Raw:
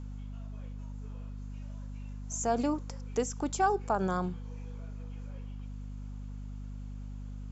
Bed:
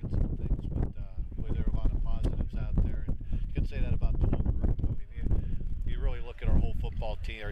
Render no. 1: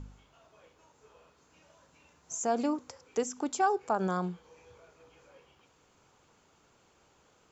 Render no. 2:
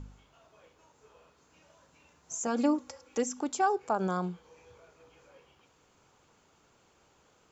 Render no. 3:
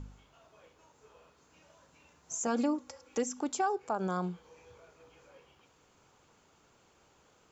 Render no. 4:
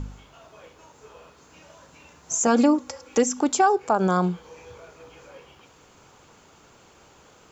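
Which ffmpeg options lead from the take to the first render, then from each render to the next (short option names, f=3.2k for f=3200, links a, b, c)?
-af "bandreject=f=50:t=h:w=4,bandreject=f=100:t=h:w=4,bandreject=f=150:t=h:w=4,bandreject=f=200:t=h:w=4,bandreject=f=250:t=h:w=4"
-filter_complex "[0:a]asettb=1/sr,asplit=3[a][b][c];[a]atrim=end=2.464[d];[b]atrim=start=2.46:end=3.4,asetpts=PTS-STARTPTS,afade=t=in:d=0.004:c=qsin,afade=t=out:st=0.936:d=0.004:c=qsin,aecho=1:1:3.6:0.67,atrim=end_sample=41454[e];[c]atrim=start=3.396[f];[d][e]acrossfade=d=0.004:c1=hsin:c2=qsin[g];[g][f]acrossfade=d=0.004:c1=qsin:c2=hsin,asettb=1/sr,asplit=3[h][i][j];[h]atrim=end=3.934[k];[i]atrim=start=3.93:end=4.34,asetpts=PTS-STARTPTS,afade=t=in:d=0.004:c=qsin,afade=t=out:st=0.406:d=0.004:c=qsin,bandreject=f=1.8k:w=7.7[l];[j]atrim=start=4.336[m];[k][l]acrossfade=d=0.004:c1=hsin:c2=qsin[n];[n][m]acrossfade=d=0.004:c1=qsin:c2=hsin"
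-af "alimiter=limit=-21dB:level=0:latency=1:release=472"
-af "volume=12dB"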